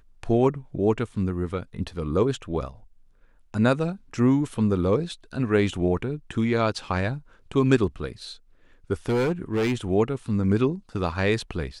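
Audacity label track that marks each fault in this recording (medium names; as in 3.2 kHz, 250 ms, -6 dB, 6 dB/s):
9.080000	9.750000	clipped -20 dBFS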